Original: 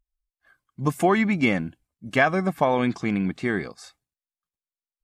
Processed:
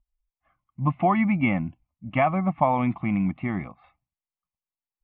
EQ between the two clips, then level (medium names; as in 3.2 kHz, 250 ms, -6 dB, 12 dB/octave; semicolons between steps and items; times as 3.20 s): low-pass 2.6 kHz 24 dB/octave; distance through air 350 m; static phaser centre 1.6 kHz, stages 6; +4.0 dB